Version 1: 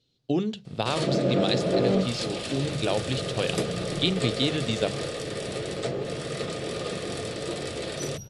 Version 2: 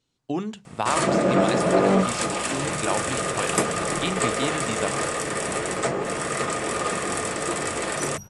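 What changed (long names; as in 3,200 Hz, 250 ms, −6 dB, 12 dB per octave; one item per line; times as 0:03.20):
first sound +6.5 dB
master: add octave-band graphic EQ 125/500/1,000/2,000/4,000/8,000 Hz −6/−6/+10/+4/−11/+9 dB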